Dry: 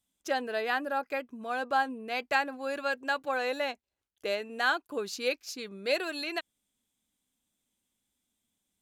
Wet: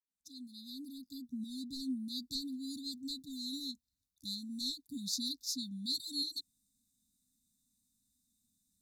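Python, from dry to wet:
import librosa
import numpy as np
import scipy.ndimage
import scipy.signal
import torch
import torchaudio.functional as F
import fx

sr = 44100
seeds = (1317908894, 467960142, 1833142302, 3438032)

y = fx.fade_in_head(x, sr, length_s=1.42)
y = 10.0 ** (-17.0 / 20.0) * np.tanh(y / 10.0 ** (-17.0 / 20.0))
y = fx.brickwall_bandstop(y, sr, low_hz=290.0, high_hz=3500.0)
y = y * librosa.db_to_amplitude(3.5)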